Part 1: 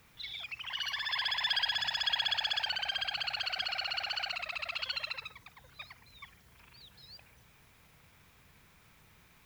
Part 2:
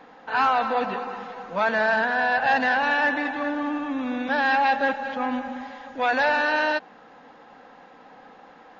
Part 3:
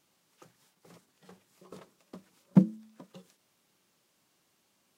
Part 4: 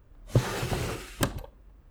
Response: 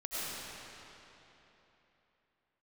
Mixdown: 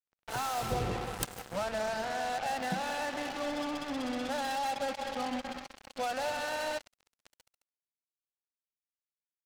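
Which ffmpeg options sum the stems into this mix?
-filter_complex "[0:a]acompressor=threshold=-35dB:ratio=12,adelay=2500,volume=-8.5dB,asplit=2[a][b];[b]volume=-16dB[c];[1:a]aecho=1:1:1.5:0.47,volume=-5dB,asplit=2[d][e];[e]volume=-24dB[f];[2:a]adelay=150,volume=-11dB[g];[3:a]acrossover=split=1200[h][i];[h]aeval=exprs='val(0)*(1-1/2+1/2*cos(2*PI*1.1*n/s))':c=same[j];[i]aeval=exprs='val(0)*(1-1/2-1/2*cos(2*PI*1.1*n/s))':c=same[k];[j][k]amix=inputs=2:normalize=0,volume=2dB,asplit=2[l][m];[m]volume=-15dB[n];[d][g][l]amix=inputs=3:normalize=0,equalizer=f=960:w=5.8:g=3.5,acompressor=threshold=-29dB:ratio=3,volume=0dB[o];[4:a]atrim=start_sample=2205[p];[c][f][n]amix=inputs=3:normalize=0[q];[q][p]afir=irnorm=-1:irlink=0[r];[a][o][r]amix=inputs=3:normalize=0,equalizer=f=1.7k:w=0.64:g=-8,acrusher=bits=5:mix=0:aa=0.5"

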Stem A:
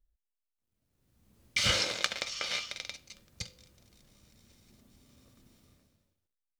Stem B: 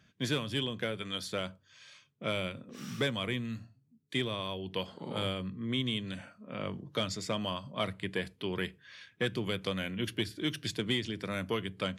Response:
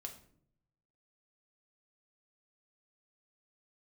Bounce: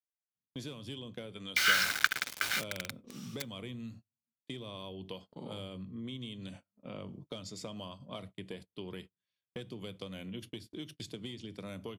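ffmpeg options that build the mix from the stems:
-filter_complex "[0:a]highpass=f=1.5k:t=q:w=7.4,acrusher=bits=4:mix=0:aa=0.000001,volume=-4.5dB,asplit=2[a][b];[b]volume=-21dB[c];[1:a]equalizer=f=1.7k:t=o:w=0.9:g=-10,acompressor=threshold=-39dB:ratio=5,adelay=350,volume=-3dB,asplit=2[d][e];[e]volume=-7dB[f];[2:a]atrim=start_sample=2205[g];[c][f]amix=inputs=2:normalize=0[h];[h][g]afir=irnorm=-1:irlink=0[i];[a][d][i]amix=inputs=3:normalize=0,highpass=42,agate=range=-34dB:threshold=-48dB:ratio=16:detection=peak"

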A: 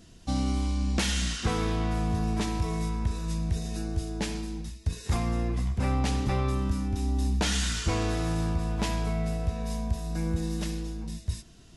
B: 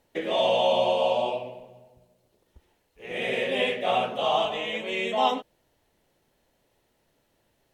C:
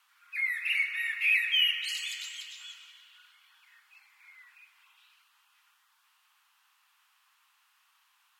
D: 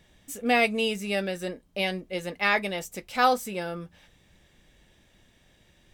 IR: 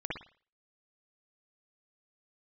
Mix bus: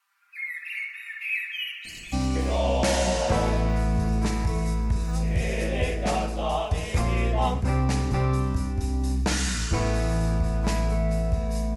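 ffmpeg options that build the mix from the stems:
-filter_complex "[0:a]adelay=1850,volume=1dB,asplit=2[a][b];[b]volume=-9.5dB[c];[1:a]adelay=2200,volume=-3dB[d];[2:a]aecho=1:1:5.1:0.81,volume=-9.5dB,asplit=2[e][f];[f]volume=-3.5dB[g];[3:a]deesser=0.8,adelay=1900,volume=-19.5dB[h];[4:a]atrim=start_sample=2205[i];[c][g]amix=inputs=2:normalize=0[j];[j][i]afir=irnorm=-1:irlink=0[k];[a][d][e][h][k]amix=inputs=5:normalize=0,equalizer=f=3.3k:t=o:w=0.44:g=-7.5,asoftclip=type=tanh:threshold=-7.5dB"

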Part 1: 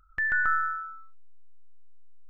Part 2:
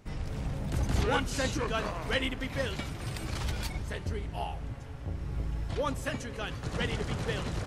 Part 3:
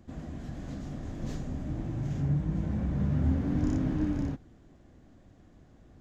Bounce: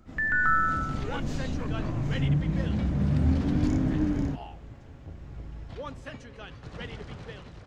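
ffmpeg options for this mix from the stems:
-filter_complex "[0:a]volume=-1dB[a];[1:a]lowpass=5.1k,volume=-12dB[b];[2:a]volume=-2dB[c];[a][b][c]amix=inputs=3:normalize=0,dynaudnorm=f=110:g=9:m=5dB"

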